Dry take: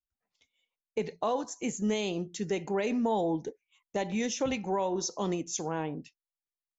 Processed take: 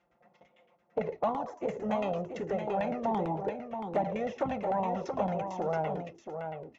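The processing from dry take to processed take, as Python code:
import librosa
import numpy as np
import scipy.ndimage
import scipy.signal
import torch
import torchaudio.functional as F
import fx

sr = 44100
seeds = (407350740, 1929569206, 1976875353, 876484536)

y = fx.bin_compress(x, sr, power=0.6)
y = scipy.signal.sosfilt(scipy.signal.butter(2, 74.0, 'highpass', fs=sr, output='sos'), y)
y = fx.high_shelf(y, sr, hz=6600.0, db=4.5)
y = y + 0.37 * np.pad(y, (int(1.5 * sr / 1000.0), 0))[:len(y)]
y = fx.filter_lfo_lowpass(y, sr, shape='saw_down', hz=8.9, low_hz=590.0, high_hz=2200.0, q=1.1)
y = fx.env_flanger(y, sr, rest_ms=5.8, full_db=-17.0)
y = y + 10.0 ** (-7.0 / 20.0) * np.pad(y, (int(678 * sr / 1000.0), 0))[:len(y)]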